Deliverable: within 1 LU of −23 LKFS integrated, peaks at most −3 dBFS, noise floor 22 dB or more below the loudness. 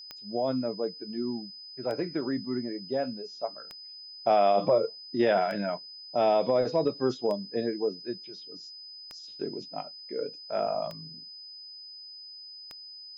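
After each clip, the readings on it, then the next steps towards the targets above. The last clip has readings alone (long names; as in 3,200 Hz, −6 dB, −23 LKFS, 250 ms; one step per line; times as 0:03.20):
number of clicks 8; interfering tone 5,000 Hz; level of the tone −43 dBFS; integrated loudness −29.5 LKFS; sample peak −13.5 dBFS; target loudness −23.0 LKFS
→ click removal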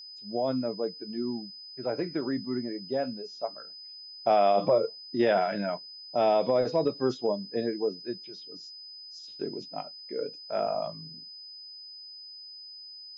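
number of clicks 0; interfering tone 5,000 Hz; level of the tone −43 dBFS
→ notch filter 5,000 Hz, Q 30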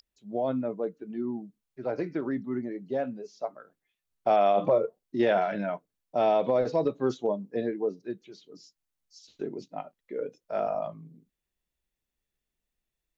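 interfering tone none found; integrated loudness −29.5 LKFS; sample peak −14.0 dBFS; target loudness −23.0 LKFS
→ level +6.5 dB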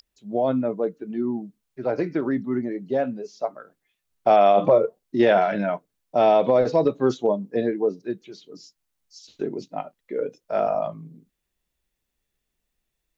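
integrated loudness −23.0 LKFS; sample peak −7.5 dBFS; background noise floor −80 dBFS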